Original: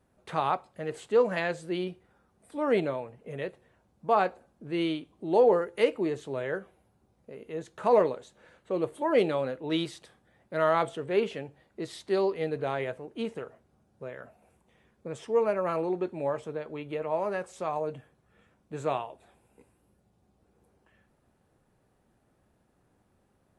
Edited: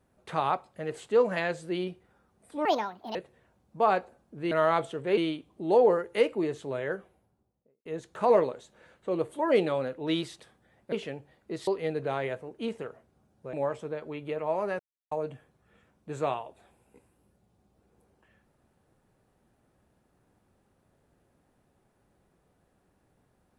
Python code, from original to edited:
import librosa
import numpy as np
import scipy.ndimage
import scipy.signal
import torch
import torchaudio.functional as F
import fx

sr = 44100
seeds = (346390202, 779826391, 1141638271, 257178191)

y = fx.studio_fade_out(x, sr, start_s=6.54, length_s=0.94)
y = fx.edit(y, sr, fx.speed_span(start_s=2.65, length_s=0.79, speed=1.57),
    fx.move(start_s=10.55, length_s=0.66, to_s=4.8),
    fx.cut(start_s=11.96, length_s=0.28),
    fx.cut(start_s=14.1, length_s=2.07),
    fx.silence(start_s=17.43, length_s=0.32), tone=tone)